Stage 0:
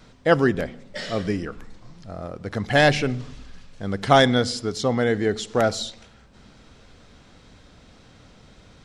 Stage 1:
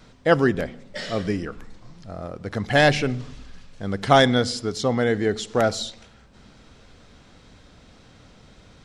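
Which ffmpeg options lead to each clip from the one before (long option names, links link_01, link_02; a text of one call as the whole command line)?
ffmpeg -i in.wav -af anull out.wav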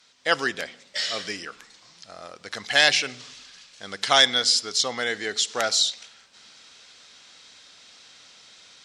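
ffmpeg -i in.wav -af "bandpass=frequency=5400:width_type=q:width=0.82:csg=0,dynaudnorm=framelen=130:gausssize=3:maxgain=8.5dB,volume=2dB" out.wav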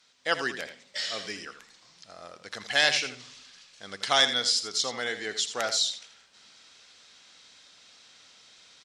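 ffmpeg -i in.wav -af "aecho=1:1:82:0.282,volume=-5dB" out.wav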